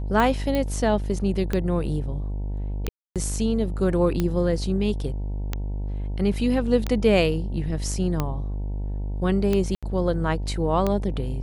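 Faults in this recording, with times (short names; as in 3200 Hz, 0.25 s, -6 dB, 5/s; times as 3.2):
buzz 50 Hz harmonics 19 -28 dBFS
tick 45 rpm -11 dBFS
0.55 pop -13 dBFS
2.89–3.16 gap 0.267 s
9.75–9.83 gap 76 ms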